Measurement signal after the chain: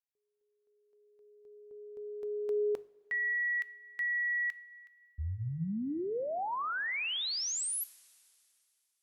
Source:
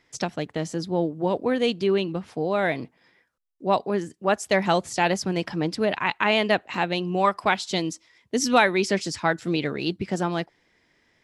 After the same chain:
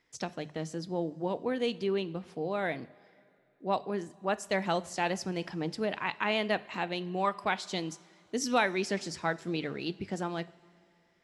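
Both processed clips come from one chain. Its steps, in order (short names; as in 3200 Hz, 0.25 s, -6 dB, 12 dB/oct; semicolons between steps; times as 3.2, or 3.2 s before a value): notches 50/100/150 Hz; two-slope reverb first 0.46 s, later 2.8 s, from -14 dB, DRR 15 dB; gain -8.5 dB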